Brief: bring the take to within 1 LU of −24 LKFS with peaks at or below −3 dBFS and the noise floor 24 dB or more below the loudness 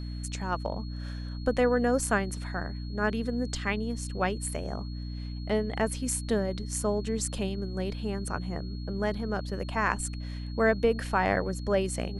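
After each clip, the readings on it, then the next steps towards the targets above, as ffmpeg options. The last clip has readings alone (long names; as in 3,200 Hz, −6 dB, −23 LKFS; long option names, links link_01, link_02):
mains hum 60 Hz; hum harmonics up to 300 Hz; level of the hum −34 dBFS; interfering tone 4,300 Hz; level of the tone −50 dBFS; integrated loudness −30.5 LKFS; sample peak −10.0 dBFS; target loudness −24.0 LKFS
→ -af "bandreject=frequency=60:width_type=h:width=6,bandreject=frequency=120:width_type=h:width=6,bandreject=frequency=180:width_type=h:width=6,bandreject=frequency=240:width_type=h:width=6,bandreject=frequency=300:width_type=h:width=6"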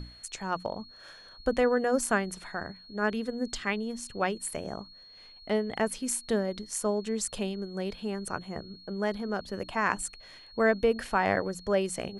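mains hum none found; interfering tone 4,300 Hz; level of the tone −50 dBFS
→ -af "bandreject=frequency=4300:width=30"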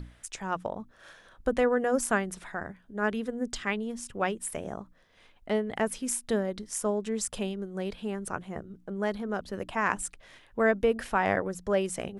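interfering tone none found; integrated loudness −30.5 LKFS; sample peak −10.5 dBFS; target loudness −24.0 LKFS
→ -af "volume=6.5dB"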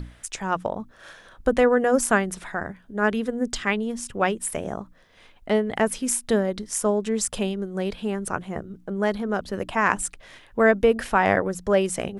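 integrated loudness −24.0 LKFS; sample peak −4.0 dBFS; background noise floor −53 dBFS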